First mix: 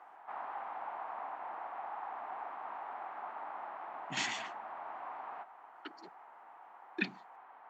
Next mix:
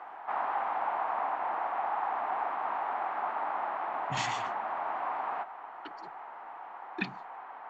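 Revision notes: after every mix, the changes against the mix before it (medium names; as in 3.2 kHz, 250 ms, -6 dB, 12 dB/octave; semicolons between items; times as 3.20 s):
speech: remove high-pass 190 Hz 24 dB/octave; background +10.5 dB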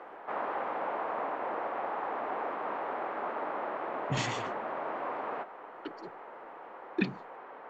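master: add resonant low shelf 630 Hz +6.5 dB, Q 3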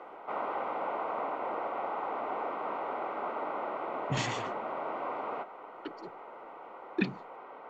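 background: add Butterworth band-stop 1.7 kHz, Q 5.3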